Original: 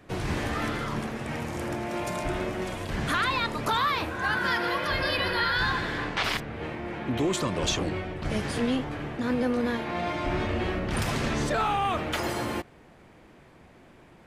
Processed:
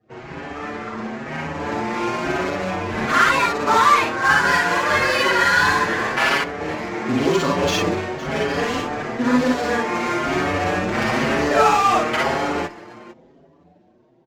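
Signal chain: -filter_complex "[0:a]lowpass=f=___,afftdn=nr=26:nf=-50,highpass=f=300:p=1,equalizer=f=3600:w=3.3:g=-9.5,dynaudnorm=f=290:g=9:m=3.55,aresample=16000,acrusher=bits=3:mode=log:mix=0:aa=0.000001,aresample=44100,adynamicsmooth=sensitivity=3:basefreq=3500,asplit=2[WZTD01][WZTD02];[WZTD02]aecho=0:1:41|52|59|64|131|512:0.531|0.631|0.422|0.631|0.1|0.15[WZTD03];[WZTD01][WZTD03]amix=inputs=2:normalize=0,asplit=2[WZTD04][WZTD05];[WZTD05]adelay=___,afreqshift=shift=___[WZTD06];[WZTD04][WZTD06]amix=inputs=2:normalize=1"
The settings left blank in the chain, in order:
5000, 6.1, 1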